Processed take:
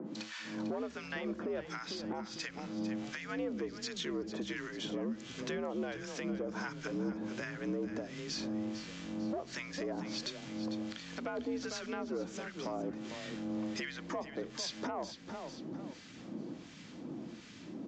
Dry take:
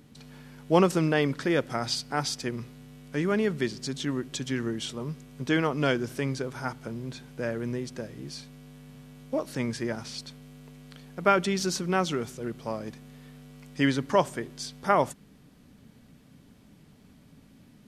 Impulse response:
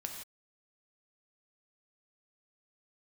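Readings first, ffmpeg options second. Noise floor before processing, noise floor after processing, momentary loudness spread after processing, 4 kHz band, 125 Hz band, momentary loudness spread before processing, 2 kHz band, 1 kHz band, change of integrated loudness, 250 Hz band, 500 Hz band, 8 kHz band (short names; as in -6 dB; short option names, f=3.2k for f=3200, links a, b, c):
-56 dBFS, -51 dBFS, 7 LU, -7.0 dB, -14.0 dB, 23 LU, -9.0 dB, -14.0 dB, -11.0 dB, -7.5 dB, -10.5 dB, -9.0 dB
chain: -filter_complex "[0:a]highpass=69,acrossover=split=3000[a][b];[b]acompressor=threshold=-44dB:ratio=4:attack=1:release=60[c];[a][c]amix=inputs=2:normalize=0,aeval=exprs='0.501*(cos(1*acos(clip(val(0)/0.501,-1,1)))-cos(1*PI/2))+0.01*(cos(8*acos(clip(val(0)/0.501,-1,1)))-cos(8*PI/2))':c=same,acompressor=threshold=-39dB:ratio=8,acrossover=split=1100[d][e];[d]aeval=exprs='val(0)*(1-1/2+1/2*cos(2*PI*1.4*n/s))':c=same[f];[e]aeval=exprs='val(0)*(1-1/2-1/2*cos(2*PI*1.4*n/s))':c=same[g];[f][g]amix=inputs=2:normalize=0,asoftclip=type=tanh:threshold=-35dB,aresample=16000,aresample=44100,afreqshift=69,asplit=5[h][i][j][k][l];[i]adelay=449,afreqshift=-44,volume=-11.5dB[m];[j]adelay=898,afreqshift=-88,volume=-20.1dB[n];[k]adelay=1347,afreqshift=-132,volume=-28.8dB[o];[l]adelay=1796,afreqshift=-176,volume=-37.4dB[p];[h][m][n][o][p]amix=inputs=5:normalize=0,alimiter=level_in=17.5dB:limit=-24dB:level=0:latency=1:release=215,volume=-17.5dB,volume=13dB"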